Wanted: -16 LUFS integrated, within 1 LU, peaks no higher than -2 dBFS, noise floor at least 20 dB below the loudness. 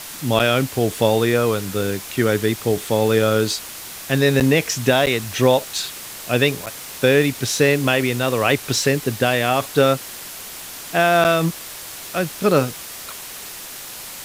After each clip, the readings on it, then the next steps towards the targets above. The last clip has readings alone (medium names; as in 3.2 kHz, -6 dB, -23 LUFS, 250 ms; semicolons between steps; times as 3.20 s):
dropouts 5; longest dropout 8.2 ms; noise floor -35 dBFS; noise floor target -39 dBFS; loudness -19.0 LUFS; peak level -3.0 dBFS; loudness target -16.0 LUFS
-> interpolate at 0.39/4.40/5.06/6.66/11.24 s, 8.2 ms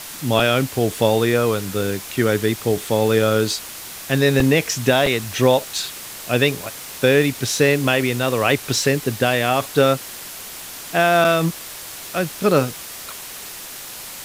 dropouts 0; noise floor -35 dBFS; noise floor target -39 dBFS
-> noise reduction 6 dB, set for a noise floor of -35 dBFS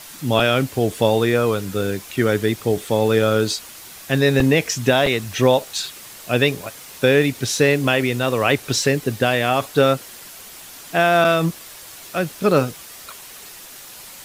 noise floor -40 dBFS; loudness -19.0 LUFS; peak level -3.0 dBFS; loudness target -16.0 LUFS
-> trim +3 dB; peak limiter -2 dBFS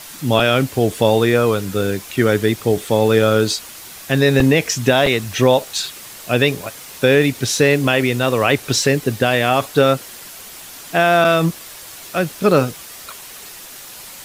loudness -16.5 LUFS; peak level -2.0 dBFS; noise floor -37 dBFS